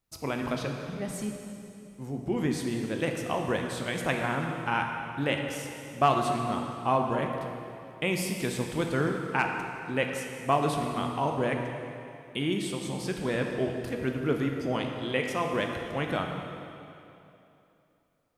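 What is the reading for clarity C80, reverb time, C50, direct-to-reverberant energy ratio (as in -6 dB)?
4.5 dB, 2.9 s, 3.5 dB, 2.0 dB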